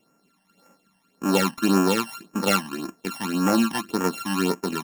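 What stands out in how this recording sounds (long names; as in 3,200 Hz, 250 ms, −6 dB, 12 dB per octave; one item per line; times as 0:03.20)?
a buzz of ramps at a fixed pitch in blocks of 32 samples
phaser sweep stages 12, 1.8 Hz, lowest notch 400–3,900 Hz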